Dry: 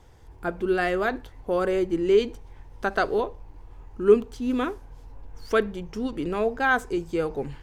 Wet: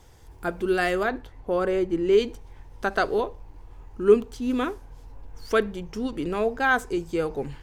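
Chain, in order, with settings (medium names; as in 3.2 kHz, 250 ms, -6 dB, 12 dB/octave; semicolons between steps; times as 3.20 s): treble shelf 4 kHz +9 dB, from 1.03 s -4 dB, from 2.13 s +3.5 dB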